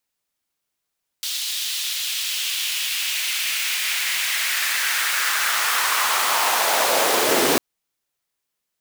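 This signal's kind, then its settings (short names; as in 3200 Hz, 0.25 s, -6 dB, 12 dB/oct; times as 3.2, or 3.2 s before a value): swept filtered noise pink, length 6.35 s highpass, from 3700 Hz, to 260 Hz, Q 2, linear, gain ramp +6.5 dB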